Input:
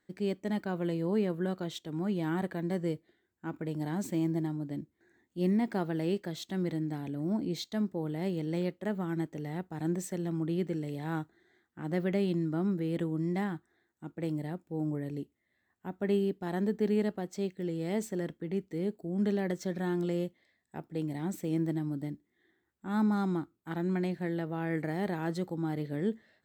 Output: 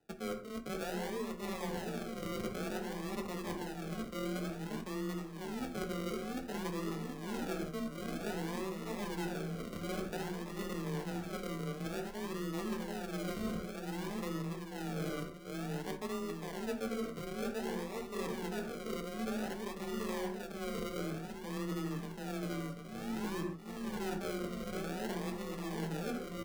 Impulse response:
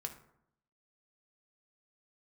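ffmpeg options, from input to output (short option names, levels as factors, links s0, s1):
-filter_complex "[0:a]aeval=exprs='if(lt(val(0),0),0.447*val(0),val(0))':c=same,tiltshelf=f=1300:g=8,tremolo=f=1.2:d=0.81,bass=f=250:g=-7,treble=f=4000:g=10,aecho=1:1:738|1476|2214|2952|3690:0.596|0.22|0.0815|0.0302|0.0112,acrusher=samples=40:mix=1:aa=0.000001:lfo=1:lforange=24:lforate=0.54[s0];[1:a]atrim=start_sample=2205,afade=t=out:st=0.21:d=0.01,atrim=end_sample=9702[s1];[s0][s1]afir=irnorm=-1:irlink=0,areverse,acompressor=threshold=0.0112:ratio=6,areverse,afreqshift=18,volume=1.5"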